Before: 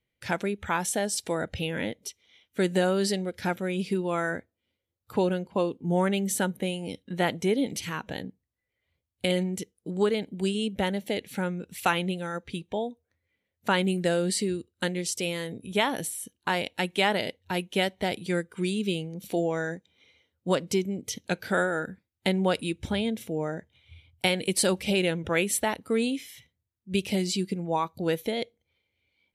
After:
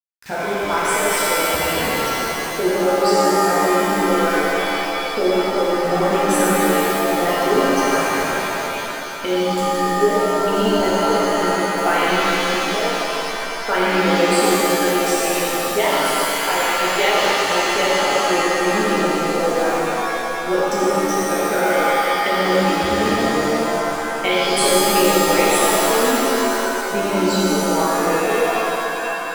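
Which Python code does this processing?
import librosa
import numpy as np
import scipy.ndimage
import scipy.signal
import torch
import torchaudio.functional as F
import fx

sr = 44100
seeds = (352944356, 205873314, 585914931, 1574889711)

y = fx.envelope_sharpen(x, sr, power=2.0)
y = np.where(np.abs(y) >= 10.0 ** (-34.5 / 20.0), y, 0.0)
y = fx.rev_shimmer(y, sr, seeds[0], rt60_s=3.2, semitones=7, shimmer_db=-2, drr_db=-8.0)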